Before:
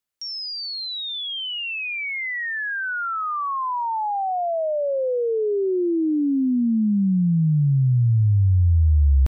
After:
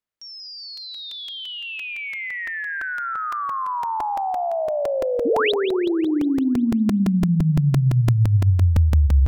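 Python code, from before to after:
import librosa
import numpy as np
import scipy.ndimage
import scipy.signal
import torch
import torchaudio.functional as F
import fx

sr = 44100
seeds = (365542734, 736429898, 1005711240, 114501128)

y = fx.high_shelf(x, sr, hz=3600.0, db=-10.5)
y = fx.spec_paint(y, sr, seeds[0], shape='rise', start_s=5.25, length_s=0.27, low_hz=230.0, high_hz=4200.0, level_db=-22.0)
y = fx.echo_split(y, sr, split_hz=320.0, low_ms=141, high_ms=184, feedback_pct=52, wet_db=-10.5)
y = fx.buffer_crackle(y, sr, first_s=0.77, period_s=0.17, block=128, kind='repeat')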